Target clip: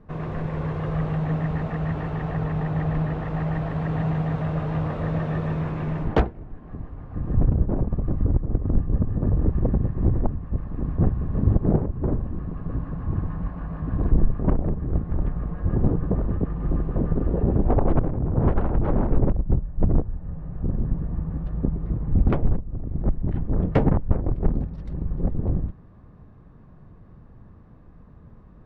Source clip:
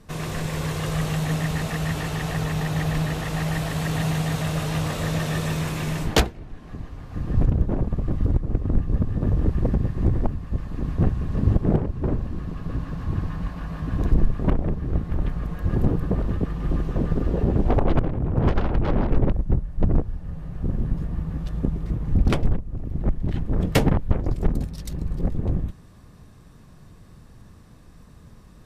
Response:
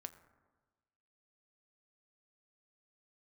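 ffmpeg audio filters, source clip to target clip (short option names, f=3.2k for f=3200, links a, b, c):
-af "lowpass=1.3k"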